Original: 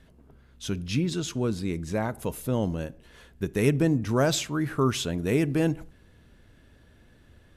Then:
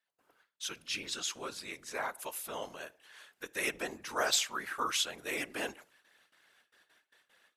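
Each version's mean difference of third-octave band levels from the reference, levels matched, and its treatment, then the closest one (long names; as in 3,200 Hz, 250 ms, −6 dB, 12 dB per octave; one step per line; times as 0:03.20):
9.5 dB: noise gate with hold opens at −46 dBFS
high-pass filter 990 Hz 12 dB per octave
random phases in short frames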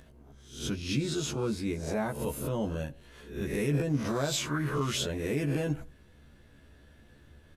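5.0 dB: peak hold with a rise ahead of every peak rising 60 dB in 0.49 s
brickwall limiter −17 dBFS, peak gain reduction 8.5 dB
upward compression, threshold −49 dBFS
double-tracking delay 14 ms −2.5 dB
level −5 dB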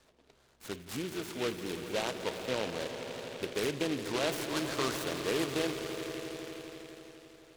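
14.0 dB: three-way crossover with the lows and the highs turned down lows −19 dB, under 390 Hz, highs −18 dB, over 2,500 Hz
brickwall limiter −23 dBFS, peak gain reduction 8.5 dB
echo that builds up and dies away 83 ms, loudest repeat 5, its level −13.5 dB
short delay modulated by noise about 2,400 Hz, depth 0.13 ms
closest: second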